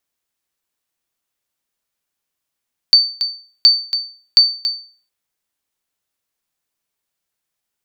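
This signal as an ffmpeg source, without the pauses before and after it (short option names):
-f lavfi -i "aevalsrc='0.841*(sin(2*PI*4560*mod(t,0.72))*exp(-6.91*mod(t,0.72)/0.42)+0.299*sin(2*PI*4560*max(mod(t,0.72)-0.28,0))*exp(-6.91*max(mod(t,0.72)-0.28,0)/0.42))':d=2.16:s=44100"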